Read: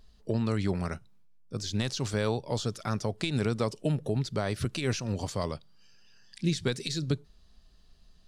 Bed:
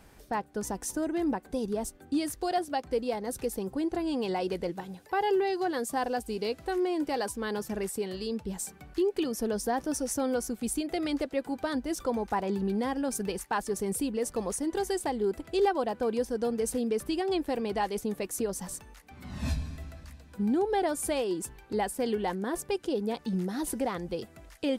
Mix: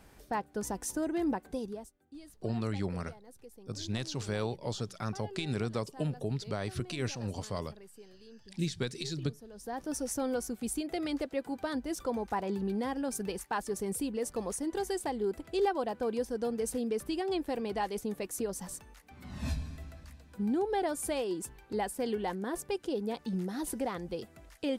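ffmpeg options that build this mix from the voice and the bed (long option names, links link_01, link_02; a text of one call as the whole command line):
ffmpeg -i stem1.wav -i stem2.wav -filter_complex "[0:a]adelay=2150,volume=-5dB[link_01];[1:a]volume=15dB,afade=type=out:start_time=1.44:duration=0.46:silence=0.11885,afade=type=in:start_time=9.53:duration=0.45:silence=0.141254[link_02];[link_01][link_02]amix=inputs=2:normalize=0" out.wav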